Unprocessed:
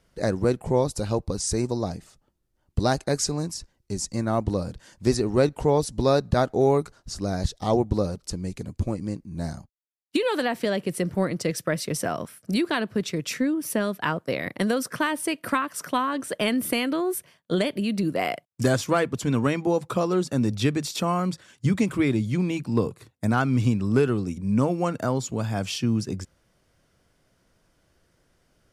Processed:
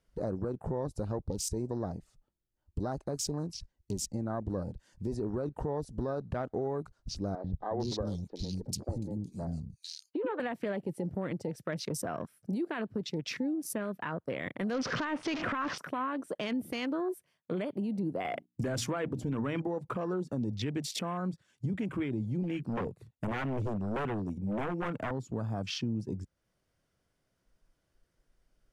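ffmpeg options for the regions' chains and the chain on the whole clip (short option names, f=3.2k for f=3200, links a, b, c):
-filter_complex "[0:a]asettb=1/sr,asplit=3[a][b][c];[a]atrim=end=7.354[d];[b]atrim=start=7.35:end=10.4,asetpts=PTS-STARTPTS,afade=t=in:d=0.004:c=qsin,afade=t=out:st=3.046:d=0.004:c=qsin,highshelf=f=3.1k:t=q:w=1.5:g=7,acrossover=split=310|2200[e][f][g];[e]adelay=90[h];[g]adelay=450[i];[h][f][i]amix=inputs=3:normalize=0,atrim=end_sample=134505[j];[c]atrim=start=10.396[k];[d][j]acrossfade=d=0.004:c1=hsin:c2=qsin[l];[l][k]acrossfade=d=0.004:c1=qsin:c2=hsin,asettb=1/sr,asplit=3[m][n][o];[m]atrim=end=14.744[p];[n]atrim=start=14.74:end=15.78,asetpts=PTS-STARTPTS,afade=t=in:d=0.004:c=qsin,afade=t=out:st=1.036:d=0.004:c=qsin,aeval=exprs='val(0)+0.5*0.0299*sgn(val(0))':c=same,lowpass=f=6.3k:w=0.5412,lowpass=f=6.3k:w=1.3066,acontrast=49[q];[o]atrim=start=15.776[r];[p][q]acrossfade=d=0.004:c1=hsin:c2=qsin[s];[s][r]acrossfade=d=0.004:c1=qsin:c2=hsin,asettb=1/sr,asplit=3[t][u][v];[t]atrim=end=18.254[w];[u]atrim=start=18.25:end=19.62,asetpts=PTS-STARTPTS,afade=t=in:d=0.004:c=qsin,afade=t=out:st=1.366:d=0.004:c=qsin,bandreject=f=60:t=h:w=6,bandreject=f=120:t=h:w=6,bandreject=f=180:t=h:w=6,bandreject=f=240:t=h:w=6,bandreject=f=300:t=h:w=6,acontrast=81[x];[v]atrim=start=19.616[y];[w][x]acrossfade=d=0.004:c1=hsin:c2=qsin[z];[z][y]acrossfade=d=0.004:c1=qsin:c2=hsin,asettb=1/sr,asplit=3[aa][ab][ac];[aa]atrim=end=22.434[ad];[ab]atrim=start=22.43:end=25.11,asetpts=PTS-STARTPTS,afade=t=in:d=0.004:c=qsin,afade=t=out:st=2.676:d=0.004:c=qsin,highpass=46,aeval=exprs='0.0841*(abs(mod(val(0)/0.0841+3,4)-2)-1)':c=same[ae];[ac]atrim=start=25.106[af];[ad][ae]acrossfade=d=0.004:c1=hsin:c2=qsin[ag];[ag][af]acrossfade=d=0.004:c1=qsin:c2=hsin,alimiter=limit=-17.5dB:level=0:latency=1:release=25,acompressor=threshold=-44dB:ratio=2,afwtdn=0.00447,volume=4dB"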